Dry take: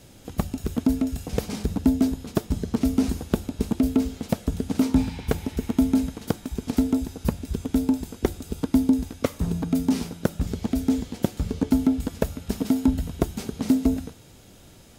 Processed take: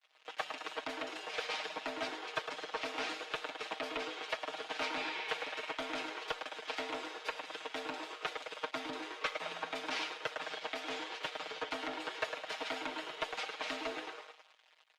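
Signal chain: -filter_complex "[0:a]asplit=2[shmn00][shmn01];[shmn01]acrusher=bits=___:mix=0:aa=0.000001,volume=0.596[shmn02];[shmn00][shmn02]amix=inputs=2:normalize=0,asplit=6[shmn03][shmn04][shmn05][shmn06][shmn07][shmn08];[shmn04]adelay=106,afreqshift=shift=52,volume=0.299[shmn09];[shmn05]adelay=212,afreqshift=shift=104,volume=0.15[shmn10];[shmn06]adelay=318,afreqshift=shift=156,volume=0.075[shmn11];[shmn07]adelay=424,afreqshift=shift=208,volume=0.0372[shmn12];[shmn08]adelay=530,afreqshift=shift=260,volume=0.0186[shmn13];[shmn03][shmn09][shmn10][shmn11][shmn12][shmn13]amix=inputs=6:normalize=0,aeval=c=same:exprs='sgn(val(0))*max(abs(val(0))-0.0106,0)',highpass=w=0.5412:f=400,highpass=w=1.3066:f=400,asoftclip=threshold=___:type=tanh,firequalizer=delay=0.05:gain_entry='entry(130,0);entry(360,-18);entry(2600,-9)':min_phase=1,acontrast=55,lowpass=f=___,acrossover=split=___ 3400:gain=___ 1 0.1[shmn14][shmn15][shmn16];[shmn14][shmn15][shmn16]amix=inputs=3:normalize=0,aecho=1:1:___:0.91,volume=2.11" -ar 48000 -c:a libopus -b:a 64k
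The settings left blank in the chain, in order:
7, 0.0794, 6200, 590, 0.0631, 6.4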